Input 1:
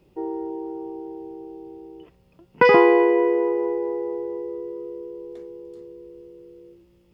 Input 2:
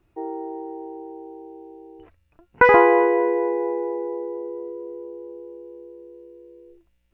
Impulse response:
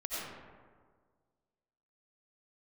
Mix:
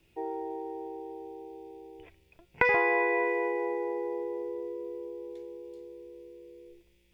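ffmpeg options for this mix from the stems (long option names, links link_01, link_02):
-filter_complex "[0:a]volume=-14.5dB,asplit=2[link_01][link_02];[link_02]volume=-15.5dB[link_03];[1:a]volume=-1,volume=-3.5dB[link_04];[2:a]atrim=start_sample=2205[link_05];[link_03][link_05]afir=irnorm=-1:irlink=0[link_06];[link_01][link_04][link_06]amix=inputs=3:normalize=0,highshelf=frequency=1800:width_type=q:width=1.5:gain=9.5,bandreject=frequency=1200:width=14,acrossover=split=620|2300[link_07][link_08][link_09];[link_07]acompressor=threshold=-32dB:ratio=4[link_10];[link_08]acompressor=threshold=-26dB:ratio=4[link_11];[link_09]acompressor=threshold=-40dB:ratio=4[link_12];[link_10][link_11][link_12]amix=inputs=3:normalize=0"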